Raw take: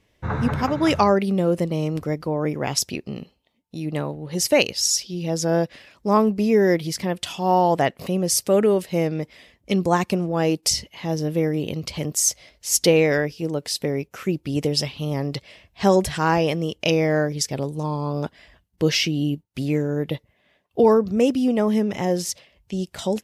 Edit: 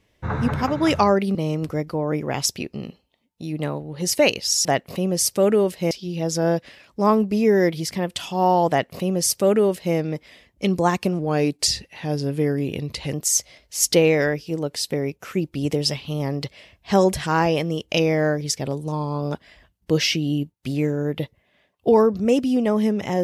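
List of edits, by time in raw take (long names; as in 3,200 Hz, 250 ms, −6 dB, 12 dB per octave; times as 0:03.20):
0:01.35–0:01.68: remove
0:07.76–0:09.02: duplicate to 0:04.98
0:10.26–0:12.05: play speed 92%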